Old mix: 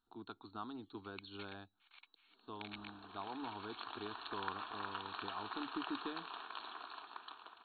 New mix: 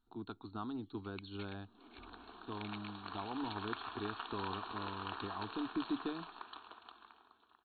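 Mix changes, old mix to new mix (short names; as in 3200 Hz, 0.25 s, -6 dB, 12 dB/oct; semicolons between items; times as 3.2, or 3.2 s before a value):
second sound: entry -0.75 s; master: add low shelf 310 Hz +11 dB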